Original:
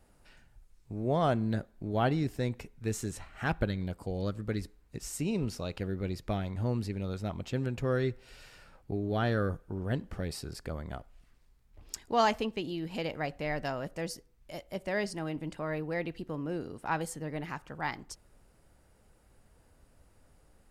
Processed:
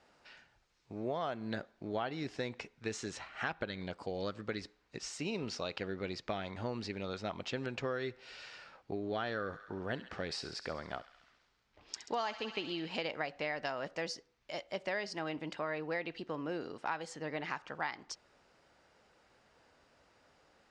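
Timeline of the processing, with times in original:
9.33–12.97 thin delay 67 ms, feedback 67%, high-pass 1400 Hz, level -13 dB
whole clip: HPF 740 Hz 6 dB/oct; compressor 12:1, threshold -38 dBFS; LPF 5800 Hz 24 dB/oct; gain +5.5 dB

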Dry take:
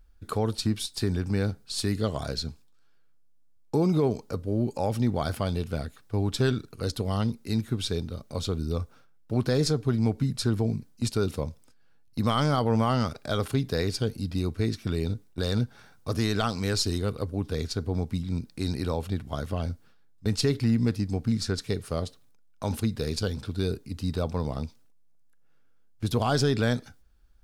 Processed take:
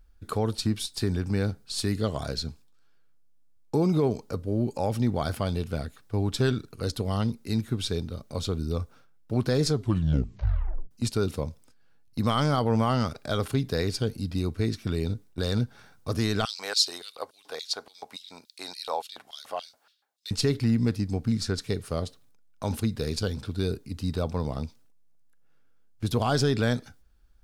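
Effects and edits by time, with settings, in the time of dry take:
9.71 tape stop 1.20 s
16.45–20.31 LFO high-pass square 3.5 Hz 750–3700 Hz

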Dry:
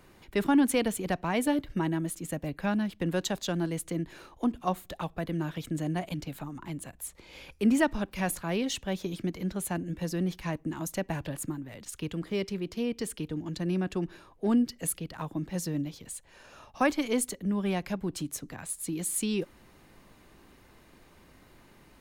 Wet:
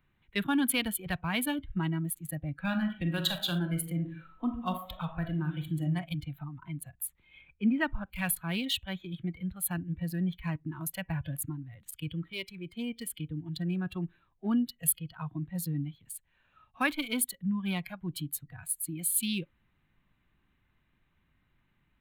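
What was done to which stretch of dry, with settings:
2.58–5.84 reverb throw, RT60 0.83 s, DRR 3.5 dB
7.41–8.07 Bessel low-pass 2100 Hz
whole clip: Wiener smoothing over 9 samples; spectral noise reduction 15 dB; EQ curve 150 Hz 0 dB, 480 Hz -15 dB, 1500 Hz -2 dB, 3900 Hz +5 dB, 5900 Hz -15 dB, 12000 Hz +6 dB; gain +3 dB

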